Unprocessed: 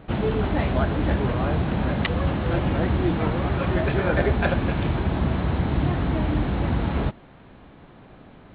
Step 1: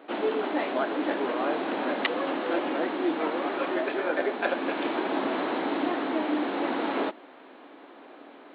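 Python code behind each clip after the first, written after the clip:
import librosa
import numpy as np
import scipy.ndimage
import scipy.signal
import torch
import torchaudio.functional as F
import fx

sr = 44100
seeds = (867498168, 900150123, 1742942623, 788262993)

y = scipy.signal.sosfilt(scipy.signal.ellip(4, 1.0, 80, 280.0, 'highpass', fs=sr, output='sos'), x)
y = fx.rider(y, sr, range_db=10, speed_s=0.5)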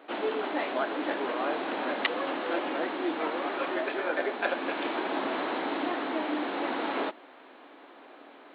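y = fx.low_shelf(x, sr, hz=460.0, db=-6.5)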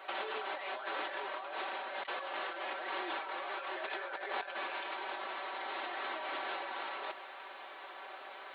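y = scipy.signal.sosfilt(scipy.signal.butter(2, 730.0, 'highpass', fs=sr, output='sos'), x)
y = y + 0.76 * np.pad(y, (int(5.2 * sr / 1000.0), 0))[:len(y)]
y = fx.over_compress(y, sr, threshold_db=-39.0, ratio=-1.0)
y = F.gain(torch.from_numpy(y), -1.5).numpy()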